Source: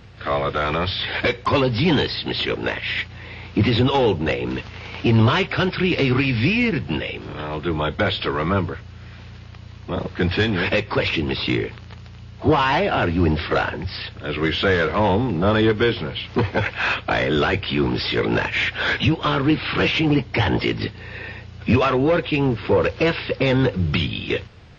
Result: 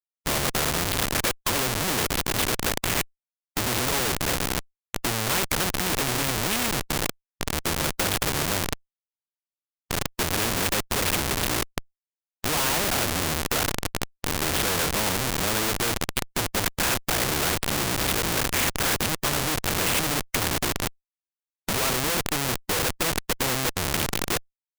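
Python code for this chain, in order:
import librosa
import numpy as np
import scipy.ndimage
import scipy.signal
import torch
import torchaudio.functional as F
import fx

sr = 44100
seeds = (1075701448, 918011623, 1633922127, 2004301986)

y = x + 10.0 ** (-37.0 / 20.0) * np.sin(2.0 * np.pi * 1700.0 * np.arange(len(x)) / sr)
y = fx.schmitt(y, sr, flips_db=-20.0)
y = fx.spectral_comp(y, sr, ratio=2.0)
y = y * 10.0 ** (8.5 / 20.0)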